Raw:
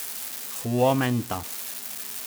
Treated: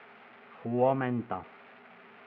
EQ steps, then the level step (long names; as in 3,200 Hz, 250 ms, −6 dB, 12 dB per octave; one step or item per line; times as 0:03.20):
high-frequency loss of the air 240 metres
loudspeaker in its box 200–2,100 Hz, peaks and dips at 280 Hz −8 dB, 570 Hz −5 dB, 1,000 Hz −6 dB, 1,700 Hz −6 dB
0.0 dB